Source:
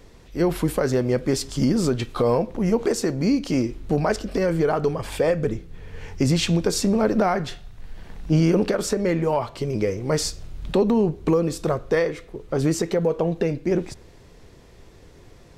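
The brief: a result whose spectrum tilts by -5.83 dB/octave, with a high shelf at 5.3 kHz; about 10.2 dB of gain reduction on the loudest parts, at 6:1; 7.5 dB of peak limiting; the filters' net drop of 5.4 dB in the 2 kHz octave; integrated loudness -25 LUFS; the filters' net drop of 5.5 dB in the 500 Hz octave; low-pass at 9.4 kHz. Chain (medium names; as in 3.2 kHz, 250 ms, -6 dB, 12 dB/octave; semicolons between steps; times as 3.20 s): low-pass 9.4 kHz; peaking EQ 500 Hz -6.5 dB; peaking EQ 2 kHz -6 dB; treble shelf 5.3 kHz -4.5 dB; compression 6:1, threshold -27 dBFS; trim +8.5 dB; peak limiter -15 dBFS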